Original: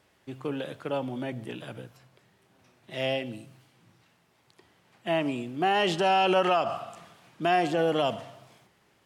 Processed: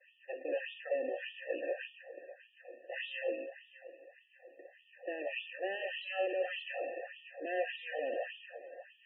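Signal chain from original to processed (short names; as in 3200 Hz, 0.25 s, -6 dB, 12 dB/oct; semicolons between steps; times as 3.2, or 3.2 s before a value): per-bin compression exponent 0.4; hard clip -22 dBFS, distortion -8 dB; short-mantissa float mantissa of 2-bit; vowel filter e; high shelf 4200 Hz +6 dB; limiter -26.5 dBFS, peak gain reduction 4.5 dB; expander -33 dBFS; on a send: narrowing echo 0.602 s, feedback 48%, band-pass 1300 Hz, level -15 dB; on the sum: LFO high-pass sine 1.7 Hz 220–3500 Hz; dynamic EQ 500 Hz, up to -4 dB, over -43 dBFS, Q 1.3; loudest bins only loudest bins 32; notch comb 210 Hz; gain +1 dB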